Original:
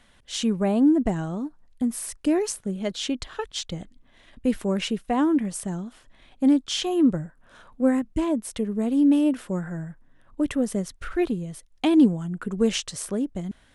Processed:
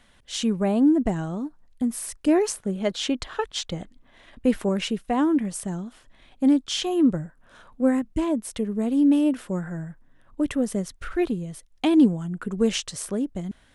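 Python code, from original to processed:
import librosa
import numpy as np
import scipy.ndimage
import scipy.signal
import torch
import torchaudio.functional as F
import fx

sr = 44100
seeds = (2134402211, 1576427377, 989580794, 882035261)

y = fx.peak_eq(x, sr, hz=910.0, db=5.0, octaves=3.0, at=(2.28, 4.69))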